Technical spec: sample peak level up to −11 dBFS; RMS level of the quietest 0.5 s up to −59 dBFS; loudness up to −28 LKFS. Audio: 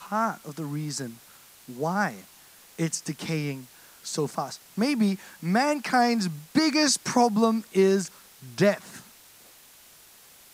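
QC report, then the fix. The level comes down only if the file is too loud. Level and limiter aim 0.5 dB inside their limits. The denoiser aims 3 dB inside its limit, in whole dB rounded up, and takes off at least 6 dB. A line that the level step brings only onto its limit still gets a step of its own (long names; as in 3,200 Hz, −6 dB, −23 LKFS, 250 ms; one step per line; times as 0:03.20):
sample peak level −8.0 dBFS: out of spec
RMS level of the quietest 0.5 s −53 dBFS: out of spec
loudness −26.0 LKFS: out of spec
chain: broadband denoise 7 dB, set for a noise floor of −53 dBFS
level −2.5 dB
brickwall limiter −11.5 dBFS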